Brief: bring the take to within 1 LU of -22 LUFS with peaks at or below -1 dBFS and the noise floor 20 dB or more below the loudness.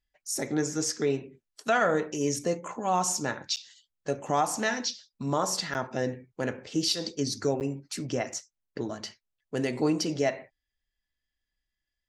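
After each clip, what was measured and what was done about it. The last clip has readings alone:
dropouts 3; longest dropout 9.3 ms; loudness -30.0 LUFS; peak -13.5 dBFS; loudness target -22.0 LUFS
-> interpolate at 3.56/5.74/7.6, 9.3 ms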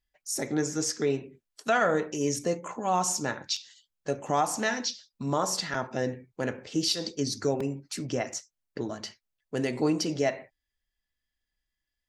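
dropouts 0; loudness -29.5 LUFS; peak -13.5 dBFS; loudness target -22.0 LUFS
-> gain +7.5 dB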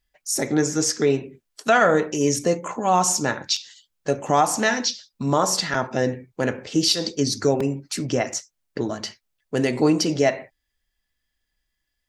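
loudness -22.0 LUFS; peak -6.0 dBFS; noise floor -78 dBFS

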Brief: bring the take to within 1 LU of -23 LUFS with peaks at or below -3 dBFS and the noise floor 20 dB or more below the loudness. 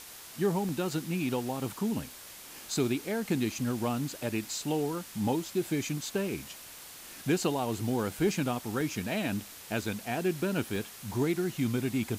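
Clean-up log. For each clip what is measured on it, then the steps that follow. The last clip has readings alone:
dropouts 4; longest dropout 1.1 ms; noise floor -48 dBFS; noise floor target -52 dBFS; loudness -32.0 LUFS; peak -15.5 dBFS; loudness target -23.0 LUFS
-> interpolate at 0.69/6.27/8.81/10.76, 1.1 ms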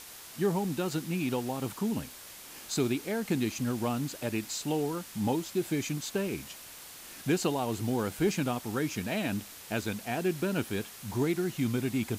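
dropouts 0; noise floor -48 dBFS; noise floor target -52 dBFS
-> denoiser 6 dB, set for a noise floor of -48 dBFS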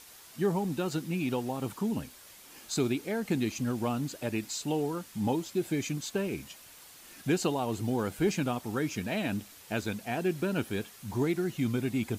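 noise floor -53 dBFS; loudness -32.0 LUFS; peak -16.0 dBFS; loudness target -23.0 LUFS
-> gain +9 dB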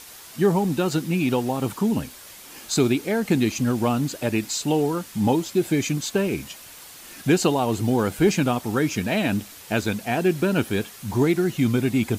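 loudness -23.0 LUFS; peak -7.0 dBFS; noise floor -44 dBFS

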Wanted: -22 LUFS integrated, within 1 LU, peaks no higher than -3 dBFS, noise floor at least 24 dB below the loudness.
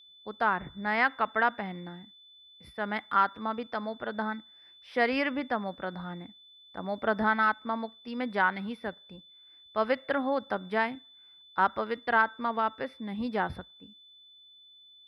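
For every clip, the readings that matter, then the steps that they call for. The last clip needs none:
steady tone 3500 Hz; tone level -53 dBFS; loudness -30.0 LUFS; peak -12.0 dBFS; loudness target -22.0 LUFS
-> notch 3500 Hz, Q 30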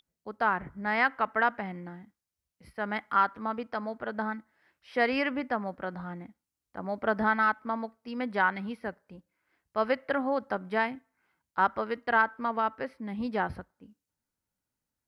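steady tone none; loudness -30.0 LUFS; peak -12.0 dBFS; loudness target -22.0 LUFS
-> gain +8 dB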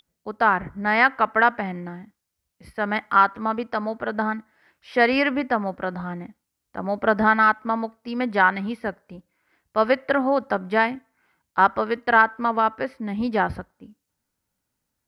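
loudness -22.0 LUFS; peak -4.0 dBFS; noise floor -80 dBFS

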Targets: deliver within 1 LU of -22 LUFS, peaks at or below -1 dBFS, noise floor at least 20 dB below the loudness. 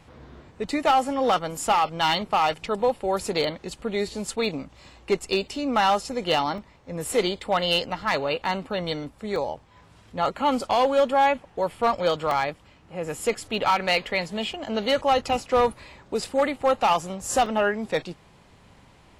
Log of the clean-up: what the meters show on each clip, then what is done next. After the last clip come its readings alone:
clipped 0.8%; flat tops at -14.0 dBFS; dropouts 5; longest dropout 2.3 ms; loudness -24.5 LUFS; peak -14.0 dBFS; loudness target -22.0 LUFS
-> clip repair -14 dBFS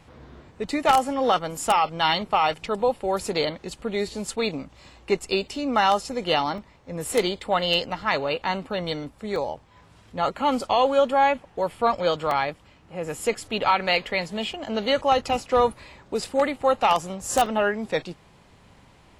clipped 0.0%; dropouts 5; longest dropout 2.3 ms
-> interpolate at 6.58/7.9/9.36/12.31/17.46, 2.3 ms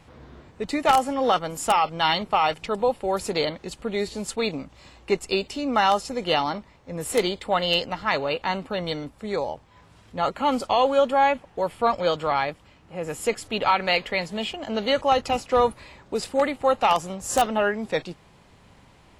dropouts 0; loudness -24.5 LUFS; peak -5.0 dBFS; loudness target -22.0 LUFS
-> gain +2.5 dB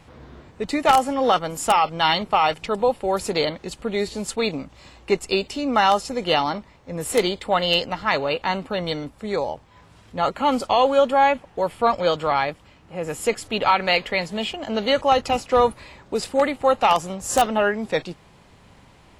loudness -22.0 LUFS; peak -2.5 dBFS; noise floor -52 dBFS

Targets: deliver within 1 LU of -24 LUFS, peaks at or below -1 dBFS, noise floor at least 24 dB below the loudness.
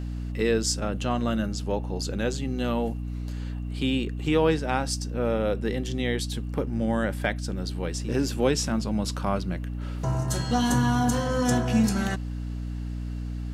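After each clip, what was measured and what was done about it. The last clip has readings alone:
hum 60 Hz; harmonics up to 300 Hz; hum level -29 dBFS; loudness -27.0 LUFS; peak -9.5 dBFS; loudness target -24.0 LUFS
-> notches 60/120/180/240/300 Hz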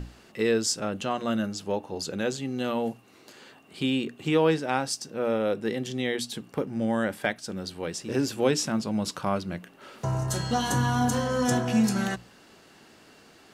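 hum none; loudness -28.0 LUFS; peak -9.5 dBFS; loudness target -24.0 LUFS
-> gain +4 dB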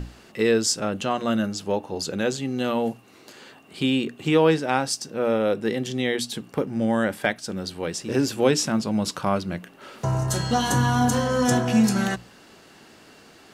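loudness -24.0 LUFS; peak -5.5 dBFS; noise floor -51 dBFS

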